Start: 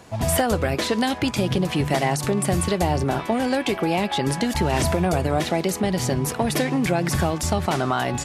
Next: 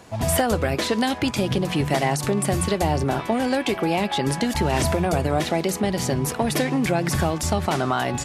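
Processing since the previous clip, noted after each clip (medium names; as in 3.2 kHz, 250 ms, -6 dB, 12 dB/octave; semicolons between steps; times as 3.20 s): hum notches 60/120/180 Hz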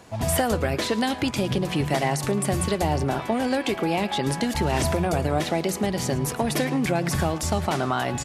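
delay 110 ms -17.5 dB; trim -2 dB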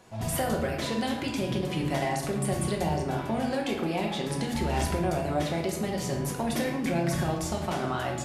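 simulated room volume 250 m³, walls mixed, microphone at 1 m; trim -8 dB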